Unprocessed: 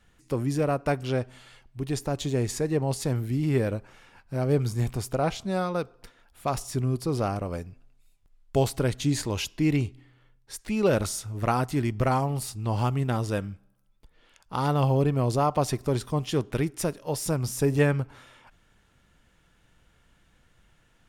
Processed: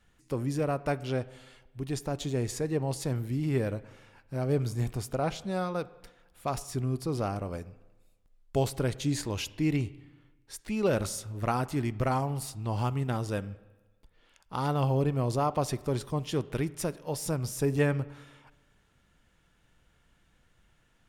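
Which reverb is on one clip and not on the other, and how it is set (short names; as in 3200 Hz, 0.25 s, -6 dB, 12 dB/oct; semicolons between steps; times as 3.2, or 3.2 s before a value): spring tank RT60 1.2 s, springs 38/50 ms, chirp 40 ms, DRR 18 dB; gain -4 dB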